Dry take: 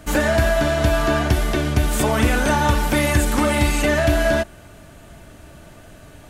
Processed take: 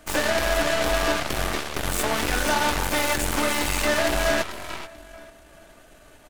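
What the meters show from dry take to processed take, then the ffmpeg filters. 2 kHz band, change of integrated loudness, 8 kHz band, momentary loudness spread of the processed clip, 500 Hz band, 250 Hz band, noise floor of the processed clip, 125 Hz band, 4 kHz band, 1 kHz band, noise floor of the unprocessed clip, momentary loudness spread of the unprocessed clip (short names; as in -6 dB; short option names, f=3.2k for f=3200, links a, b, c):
-2.5 dB, -4.5 dB, 0.0 dB, 7 LU, -5.0 dB, -8.5 dB, -51 dBFS, -13.5 dB, +1.0 dB, -3.0 dB, -44 dBFS, 3 LU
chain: -filter_complex "[0:a]asplit=2[a][b];[b]aecho=0:1:438|876|1314:0.355|0.103|0.0298[c];[a][c]amix=inputs=2:normalize=0,asoftclip=type=tanh:threshold=-14dB,equalizer=f=110:w=0.7:g=-13.5,aeval=exprs='0.251*(cos(1*acos(clip(val(0)/0.251,-1,1)))-cos(1*PI/2))+0.0141*(cos(3*acos(clip(val(0)/0.251,-1,1)))-cos(3*PI/2))+0.0501*(cos(7*acos(clip(val(0)/0.251,-1,1)))-cos(7*PI/2))+0.0224*(cos(8*acos(clip(val(0)/0.251,-1,1)))-cos(8*PI/2))':c=same"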